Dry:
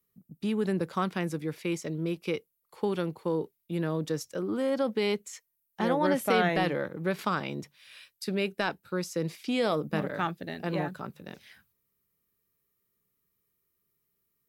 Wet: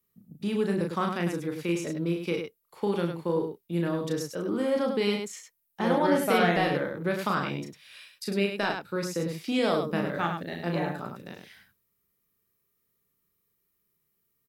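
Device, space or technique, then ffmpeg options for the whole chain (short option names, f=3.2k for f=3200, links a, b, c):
slapback doubling: -filter_complex "[0:a]asplit=3[a][b][c];[b]adelay=35,volume=-4dB[d];[c]adelay=102,volume=-6dB[e];[a][d][e]amix=inputs=3:normalize=0"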